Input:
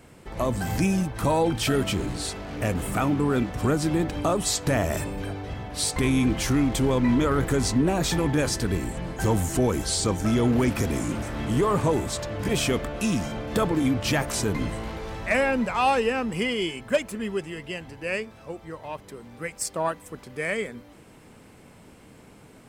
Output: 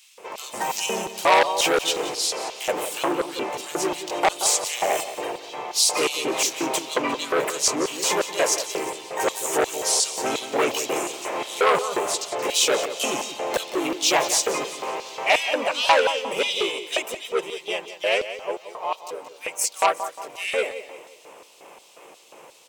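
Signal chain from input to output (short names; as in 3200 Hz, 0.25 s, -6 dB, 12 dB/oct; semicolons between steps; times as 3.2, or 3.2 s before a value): harmoniser +3 st 0 dB; ripple EQ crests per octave 0.73, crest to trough 7 dB; LFO high-pass square 2.8 Hz 580–4000 Hz; on a send: feedback echo 0.177 s, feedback 40%, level -13 dB; on the sum: core saturation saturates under 2400 Hz; gain +2 dB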